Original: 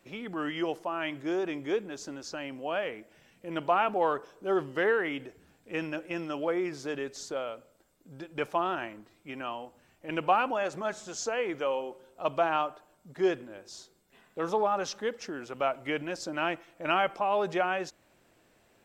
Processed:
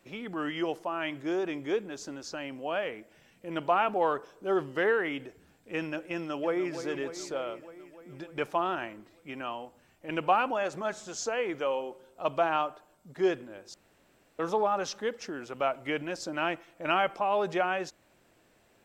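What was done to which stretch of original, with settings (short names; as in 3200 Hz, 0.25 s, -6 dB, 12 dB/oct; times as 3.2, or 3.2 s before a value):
6.13–6.73 echo throw 0.3 s, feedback 70%, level -10.5 dB
13.74–14.39 room tone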